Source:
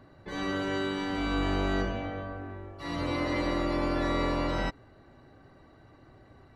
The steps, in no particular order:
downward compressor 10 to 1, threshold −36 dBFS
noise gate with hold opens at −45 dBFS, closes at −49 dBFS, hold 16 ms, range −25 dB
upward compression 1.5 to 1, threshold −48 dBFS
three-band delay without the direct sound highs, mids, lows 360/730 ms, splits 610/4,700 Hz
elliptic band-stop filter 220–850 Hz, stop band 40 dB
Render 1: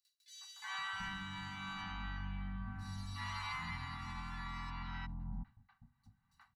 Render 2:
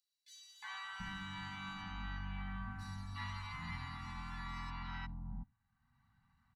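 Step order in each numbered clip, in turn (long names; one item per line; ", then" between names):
noise gate with hold, then three-band delay without the direct sound, then upward compression, then downward compressor, then elliptic band-stop filter
downward compressor, then elliptic band-stop filter, then noise gate with hold, then three-band delay without the direct sound, then upward compression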